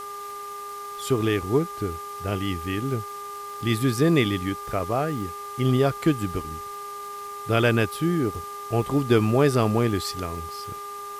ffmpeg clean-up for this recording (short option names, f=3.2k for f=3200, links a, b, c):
-af "adeclick=t=4,bandreject=f=409:t=h:w=4,bandreject=f=818:t=h:w=4,bandreject=f=1.227k:t=h:w=4,bandreject=f=1.636k:t=h:w=4,bandreject=f=2.045k:t=h:w=4,bandreject=f=1.2k:w=30,afwtdn=0.005"